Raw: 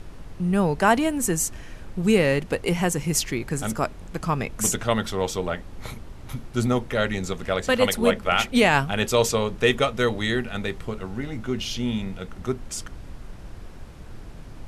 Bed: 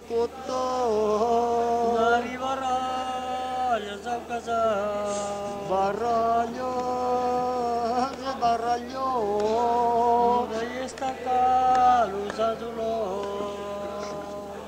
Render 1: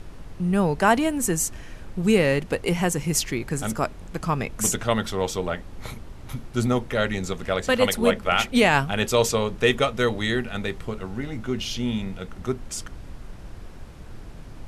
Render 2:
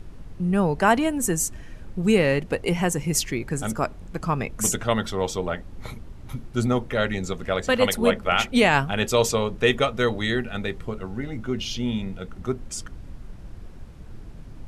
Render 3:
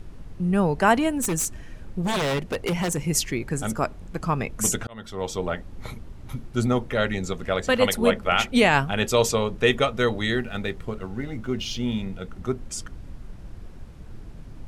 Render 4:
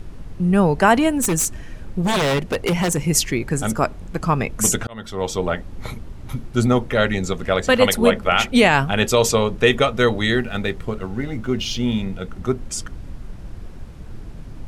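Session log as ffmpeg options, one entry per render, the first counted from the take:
-af anull
-af "afftdn=nr=6:nf=-41"
-filter_complex "[0:a]asettb=1/sr,asplit=3[a][b][c];[a]atrim=end=1.114[d];[b]atrim=start=1.11:end=3,asetpts=PTS-STARTPTS,afade=t=in:d=0.004:c=qsin,afade=t=out:st=1.886:d=0.004:c=qsin,aeval=exprs='0.112*(abs(mod(val(0)/0.112+3,4)-2)-1)':c=same[e];[c]atrim=start=2.996[f];[d][e]acrossfade=d=0.004:c1=hsin:c2=qsin[g];[g][f]acrossfade=d=0.004:c1=qsin:c2=hsin,asettb=1/sr,asplit=3[h][i][j];[h]atrim=end=10.314[k];[i]atrim=start=10.31:end=12.09,asetpts=PTS-STARTPTS,afade=t=in:d=0.004:c=qsin,afade=t=out:st=1.776:d=0.004:c=qsin,aeval=exprs='sgn(val(0))*max(abs(val(0))-0.00211,0)':c=same[l];[j]atrim=start=12.086[m];[k][l]acrossfade=d=0.004:c1=hsin:c2=qsin[n];[n][m]acrossfade=d=0.004:c1=qsin:c2=hsin,asplit=2[o][p];[o]atrim=end=4.87,asetpts=PTS-STARTPTS,afade=t=out:st=4.866:d=0.004:c=hsin[q];[p]atrim=start=4.87,asetpts=PTS-STARTPTS,afade=t=in:d=0.57[r];[q][r]concat=n=2:v=0:a=1"
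-af "volume=5.5dB,alimiter=limit=-3dB:level=0:latency=1"

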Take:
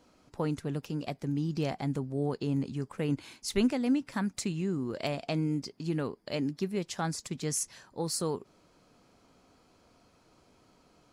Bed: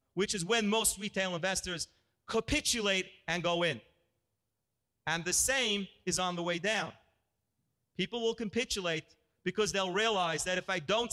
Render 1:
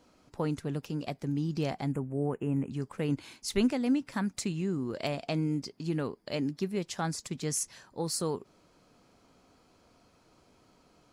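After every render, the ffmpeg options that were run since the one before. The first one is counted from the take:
-filter_complex "[0:a]asettb=1/sr,asplit=3[a][b][c];[a]atrim=end=1.924[d];[b]atrim=start=1.92:end=2.71,asetpts=PTS-STARTPTS,afade=t=in:d=0.004:c=qsin,afade=t=out:st=0.786:d=0.004:c=qsin,asuperstop=centerf=4500:order=8:qfactor=1[e];[c]atrim=start=2.706[f];[d][e]acrossfade=d=0.004:c1=hsin:c2=qsin[g];[g][f]acrossfade=d=0.004:c1=qsin:c2=hsin"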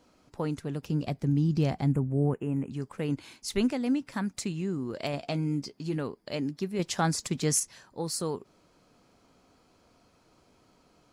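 -filter_complex "[0:a]asettb=1/sr,asplit=3[a][b][c];[a]atrim=end=0.824[d];[b]atrim=start=0.82:end=2.34,asetpts=PTS-STARTPTS,afade=t=in:d=0.004:c=qsin,afade=t=out:st=1.516:d=0.004:c=qsin,equalizer=f=70:w=0.34:g=10.5[e];[c]atrim=start=2.336[f];[d][e]acrossfade=d=0.004:c1=hsin:c2=qsin[g];[g][f]acrossfade=d=0.004:c1=qsin:c2=hsin,asettb=1/sr,asplit=3[h][i][j];[h]atrim=end=5.124[k];[i]atrim=start=5.12:end=5.97,asetpts=PTS-STARTPTS,afade=t=in:d=0.004:c=qsin,afade=t=out:st=0.846:d=0.004:c=qsin,asplit=2[l][m];[m]adelay=14,volume=-8.5dB[n];[l][n]amix=inputs=2:normalize=0,atrim=end_sample=37485[o];[j]atrim=start=5.966[p];[k][o]acrossfade=d=0.004:c1=hsin:c2=qsin[q];[q][p]acrossfade=d=0.004:c1=qsin:c2=hsin,asettb=1/sr,asplit=3[r][s][t];[r]atrim=end=6.794[u];[s]atrim=start=6.79:end=7.6,asetpts=PTS-STARTPTS,afade=t=in:d=0.004:c=qsin,afade=t=out:st=0.806:d=0.004:c=qsin,acontrast=52[v];[t]atrim=start=7.596[w];[u][v]acrossfade=d=0.004:c1=hsin:c2=qsin[x];[x][w]acrossfade=d=0.004:c1=qsin:c2=hsin"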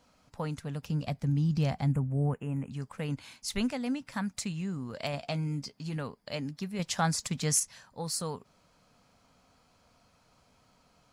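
-af "equalizer=f=350:w=2.4:g=-14"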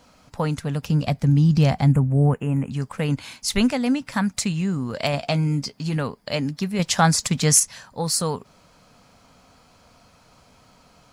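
-af "volume=11dB"

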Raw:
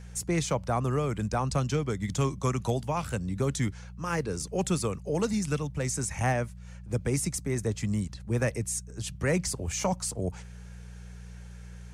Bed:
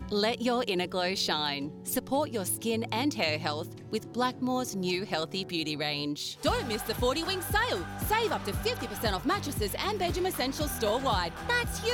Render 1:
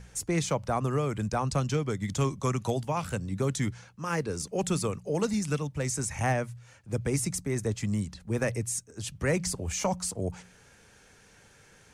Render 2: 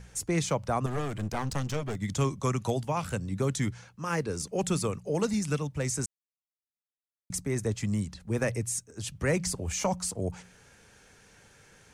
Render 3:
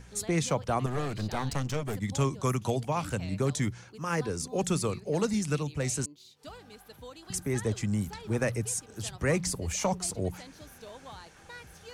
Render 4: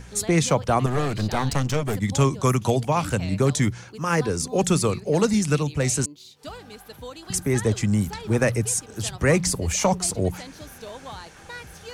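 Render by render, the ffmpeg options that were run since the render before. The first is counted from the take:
-af "bandreject=f=60:t=h:w=4,bandreject=f=120:t=h:w=4,bandreject=f=180:t=h:w=4"
-filter_complex "[0:a]asettb=1/sr,asplit=3[a][b][c];[a]atrim=end=0.864[d];[b]atrim=start=0.86:end=1.97,asetpts=PTS-STARTPTS,afade=t=in:d=0.004:c=qsin,afade=t=out:st=1.106:d=0.004:c=qsin,aeval=exprs='clip(val(0),-1,0.0141)':c=same[e];[c]atrim=start=1.966[f];[d][e]acrossfade=d=0.004:c1=hsin:c2=qsin[g];[g][f]acrossfade=d=0.004:c1=qsin:c2=hsin,asplit=3[h][i][j];[h]atrim=end=6.06,asetpts=PTS-STARTPTS,afade=t=out:st=6.056:d=0.004:c=hsin[k];[i]atrim=start=6.06:end=7.3,asetpts=PTS-STARTPTS,volume=0[l];[j]atrim=start=7.3,asetpts=PTS-STARTPTS,afade=t=in:d=0.004:c=hsin[m];[k][l][m]concat=n=3:v=0:a=1"
-filter_complex "[1:a]volume=-18.5dB[a];[0:a][a]amix=inputs=2:normalize=0"
-af "volume=8dB"

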